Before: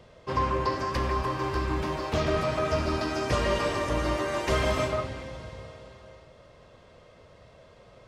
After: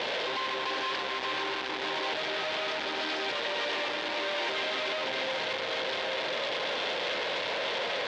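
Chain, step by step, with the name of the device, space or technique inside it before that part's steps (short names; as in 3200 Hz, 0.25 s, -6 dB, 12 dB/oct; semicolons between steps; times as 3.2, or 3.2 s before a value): 4.23–5.55 HPF 100 Hz 12 dB/oct; home computer beeper (infinite clipping; speaker cabinet 500–4300 Hz, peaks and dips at 650 Hz -4 dB, 1200 Hz -8 dB, 3500 Hz +4 dB); gain +2 dB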